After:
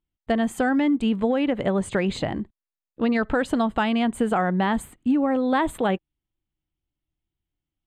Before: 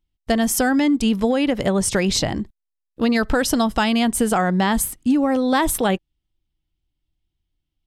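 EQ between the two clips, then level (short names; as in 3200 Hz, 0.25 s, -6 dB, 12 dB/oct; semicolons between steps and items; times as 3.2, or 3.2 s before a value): running mean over 8 samples; low shelf 74 Hz -10 dB; -2.5 dB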